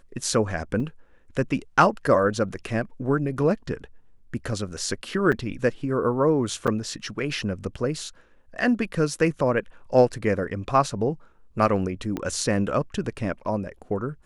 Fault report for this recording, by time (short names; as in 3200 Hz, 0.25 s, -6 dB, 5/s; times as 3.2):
0.8 gap 3.4 ms
5.32–5.33 gap 6.2 ms
6.67–6.68 gap 6.9 ms
12.17 pop -15 dBFS